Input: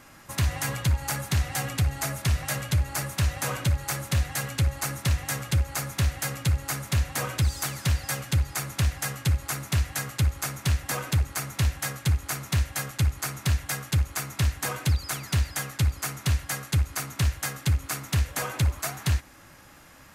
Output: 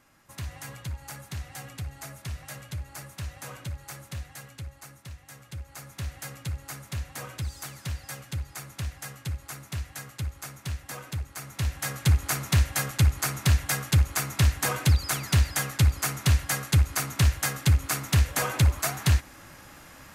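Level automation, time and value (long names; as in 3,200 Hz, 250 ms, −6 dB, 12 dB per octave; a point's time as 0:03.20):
0:04.04 −11.5 dB
0:05.20 −19 dB
0:06.14 −9 dB
0:11.32 −9 dB
0:12.11 +3 dB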